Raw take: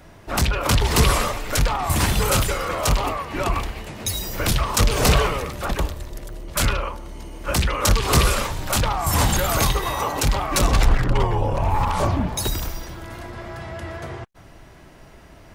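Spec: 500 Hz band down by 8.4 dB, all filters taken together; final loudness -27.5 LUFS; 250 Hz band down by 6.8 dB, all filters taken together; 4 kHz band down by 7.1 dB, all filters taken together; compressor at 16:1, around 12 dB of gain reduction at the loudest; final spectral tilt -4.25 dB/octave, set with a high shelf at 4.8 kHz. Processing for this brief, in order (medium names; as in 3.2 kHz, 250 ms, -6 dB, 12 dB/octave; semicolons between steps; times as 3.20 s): peaking EQ 250 Hz -8 dB; peaking EQ 500 Hz -8.5 dB; peaking EQ 4 kHz -6 dB; treble shelf 4.8 kHz -6.5 dB; compression 16:1, threshold -22 dBFS; trim +2 dB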